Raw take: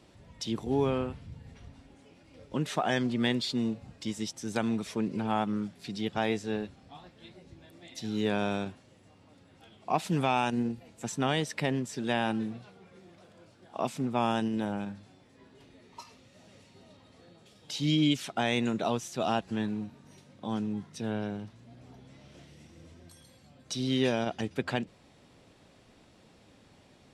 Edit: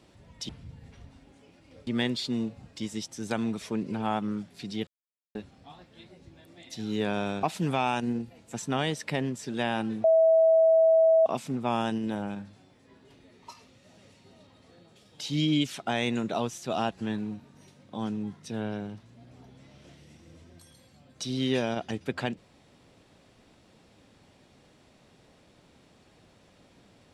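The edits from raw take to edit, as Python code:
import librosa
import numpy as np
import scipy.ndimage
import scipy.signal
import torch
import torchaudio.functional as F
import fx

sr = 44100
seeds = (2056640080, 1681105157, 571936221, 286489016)

y = fx.edit(x, sr, fx.cut(start_s=0.49, length_s=0.63),
    fx.cut(start_s=2.5, length_s=0.62),
    fx.silence(start_s=6.12, length_s=0.48),
    fx.cut(start_s=8.68, length_s=1.25),
    fx.bleep(start_s=12.54, length_s=1.22, hz=649.0, db=-16.5), tone=tone)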